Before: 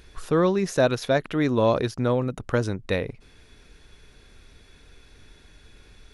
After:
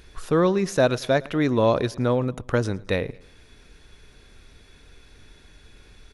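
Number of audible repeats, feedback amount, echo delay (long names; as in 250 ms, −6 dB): 2, 42%, 110 ms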